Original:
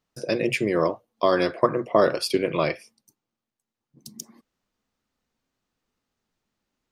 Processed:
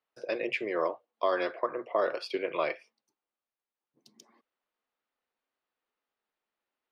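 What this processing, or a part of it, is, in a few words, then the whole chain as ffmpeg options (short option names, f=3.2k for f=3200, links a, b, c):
DJ mixer with the lows and highs turned down: -filter_complex "[0:a]acrossover=split=370 4000:gain=0.0794 1 0.0631[a][b][c];[a][b][c]amix=inputs=3:normalize=0,alimiter=limit=-12dB:level=0:latency=1:release=182,volume=-4.5dB"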